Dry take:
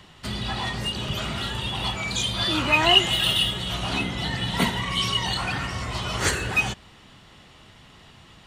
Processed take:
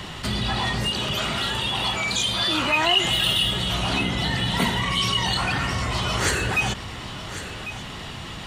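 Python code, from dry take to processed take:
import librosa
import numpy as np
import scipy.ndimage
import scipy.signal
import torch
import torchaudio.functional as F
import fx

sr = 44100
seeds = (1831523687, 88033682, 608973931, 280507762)

y = fx.low_shelf(x, sr, hz=210.0, db=-8.5, at=(0.9, 3.05))
y = y + 10.0 ** (-23.5 / 20.0) * np.pad(y, (int(1097 * sr / 1000.0), 0))[:len(y)]
y = fx.env_flatten(y, sr, amount_pct=50)
y = y * 10.0 ** (-4.0 / 20.0)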